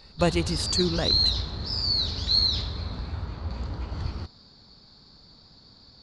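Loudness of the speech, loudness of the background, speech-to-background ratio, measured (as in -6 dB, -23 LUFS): -28.0 LUFS, -26.0 LUFS, -2.0 dB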